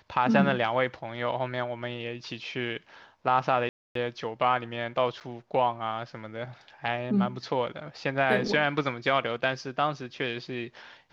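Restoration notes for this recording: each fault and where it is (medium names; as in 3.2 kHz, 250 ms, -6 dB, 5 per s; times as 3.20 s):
3.69–3.95 s: dropout 263 ms
5.20–5.21 s: dropout 8.2 ms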